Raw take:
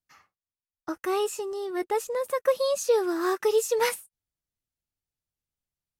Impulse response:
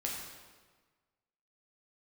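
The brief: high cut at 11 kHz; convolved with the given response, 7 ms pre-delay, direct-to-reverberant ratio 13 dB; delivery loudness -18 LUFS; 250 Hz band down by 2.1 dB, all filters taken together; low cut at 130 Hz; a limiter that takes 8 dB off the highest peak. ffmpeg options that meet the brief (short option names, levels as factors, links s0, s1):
-filter_complex "[0:a]highpass=130,lowpass=11000,equalizer=f=250:t=o:g=-4,alimiter=limit=0.0944:level=0:latency=1,asplit=2[s0][s1];[1:a]atrim=start_sample=2205,adelay=7[s2];[s1][s2]afir=irnorm=-1:irlink=0,volume=0.168[s3];[s0][s3]amix=inputs=2:normalize=0,volume=3.98"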